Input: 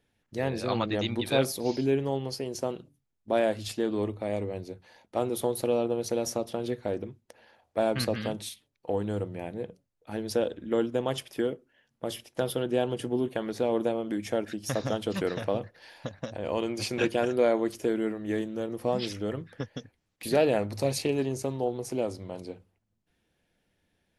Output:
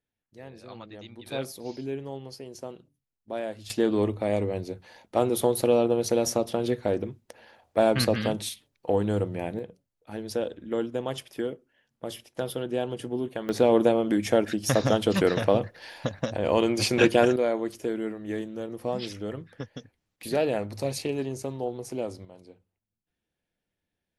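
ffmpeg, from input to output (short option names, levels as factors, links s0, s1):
-af "asetnsamples=n=441:p=0,asendcmd='1.26 volume volume -7.5dB;3.7 volume volume 5dB;9.59 volume volume -2dB;13.49 volume volume 7dB;17.36 volume volume -2dB;22.25 volume volume -11dB',volume=0.178"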